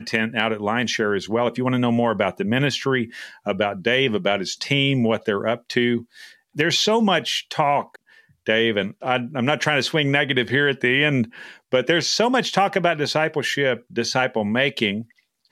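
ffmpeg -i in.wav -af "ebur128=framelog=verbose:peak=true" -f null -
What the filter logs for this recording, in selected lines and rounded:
Integrated loudness:
  I:         -20.9 LUFS
  Threshold: -31.2 LUFS
Loudness range:
  LRA:         2.1 LU
  Threshold: -41.0 LUFS
  LRA low:   -21.8 LUFS
  LRA high:  -19.7 LUFS
True peak:
  Peak:       -4.4 dBFS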